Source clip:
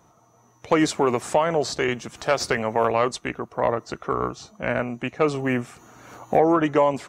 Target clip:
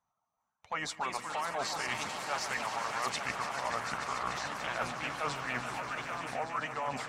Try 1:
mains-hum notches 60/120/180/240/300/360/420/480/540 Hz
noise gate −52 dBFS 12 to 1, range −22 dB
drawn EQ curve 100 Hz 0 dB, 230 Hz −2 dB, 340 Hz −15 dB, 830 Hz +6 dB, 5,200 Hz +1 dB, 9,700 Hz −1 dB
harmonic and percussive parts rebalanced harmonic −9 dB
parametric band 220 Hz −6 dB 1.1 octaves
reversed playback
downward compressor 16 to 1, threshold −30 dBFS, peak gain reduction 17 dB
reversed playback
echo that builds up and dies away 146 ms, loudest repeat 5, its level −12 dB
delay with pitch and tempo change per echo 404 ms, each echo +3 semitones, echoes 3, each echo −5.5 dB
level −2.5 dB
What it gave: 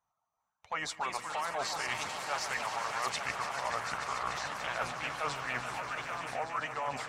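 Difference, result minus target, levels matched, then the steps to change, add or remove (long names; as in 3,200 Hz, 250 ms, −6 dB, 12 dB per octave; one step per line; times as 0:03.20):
250 Hz band −4.5 dB
remove: parametric band 220 Hz −6 dB 1.1 octaves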